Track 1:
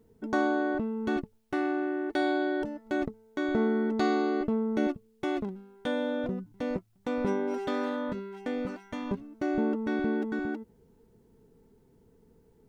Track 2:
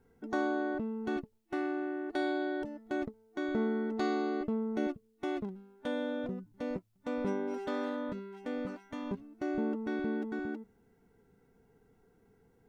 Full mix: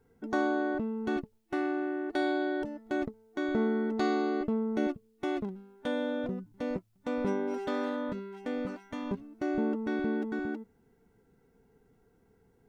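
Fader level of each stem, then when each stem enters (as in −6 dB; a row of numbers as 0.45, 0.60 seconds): −11.5, −0.5 decibels; 0.00, 0.00 seconds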